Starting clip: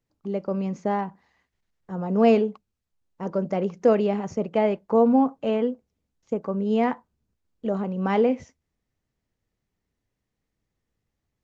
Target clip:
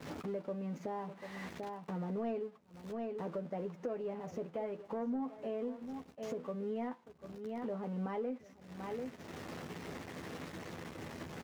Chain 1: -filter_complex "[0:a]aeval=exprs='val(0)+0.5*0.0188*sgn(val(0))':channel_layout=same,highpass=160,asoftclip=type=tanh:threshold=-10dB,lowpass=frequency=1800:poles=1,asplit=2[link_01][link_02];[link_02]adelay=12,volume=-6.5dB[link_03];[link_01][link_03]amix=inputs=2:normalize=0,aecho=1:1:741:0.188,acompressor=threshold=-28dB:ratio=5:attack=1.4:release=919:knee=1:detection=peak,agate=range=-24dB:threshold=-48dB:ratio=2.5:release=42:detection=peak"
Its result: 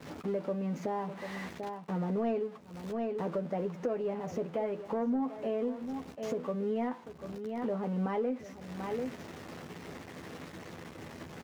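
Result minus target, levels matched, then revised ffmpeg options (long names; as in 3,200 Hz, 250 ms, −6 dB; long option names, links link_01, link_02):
downward compressor: peak gain reduction −6 dB
-filter_complex "[0:a]aeval=exprs='val(0)+0.5*0.0188*sgn(val(0))':channel_layout=same,highpass=160,asoftclip=type=tanh:threshold=-10dB,lowpass=frequency=1800:poles=1,asplit=2[link_01][link_02];[link_02]adelay=12,volume=-6.5dB[link_03];[link_01][link_03]amix=inputs=2:normalize=0,aecho=1:1:741:0.188,acompressor=threshold=-35.5dB:ratio=5:attack=1.4:release=919:knee=1:detection=peak,agate=range=-24dB:threshold=-48dB:ratio=2.5:release=42:detection=peak"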